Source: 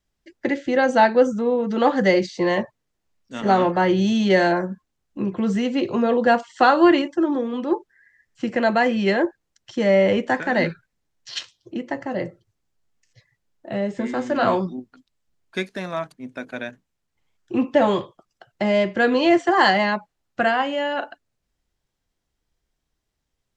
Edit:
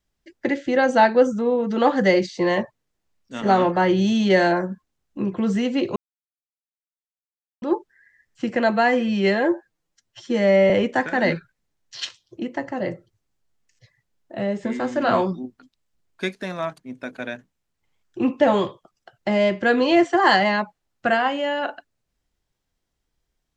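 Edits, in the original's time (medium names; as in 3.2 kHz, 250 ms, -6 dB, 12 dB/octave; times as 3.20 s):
5.96–7.62 s: mute
8.72–10.04 s: stretch 1.5×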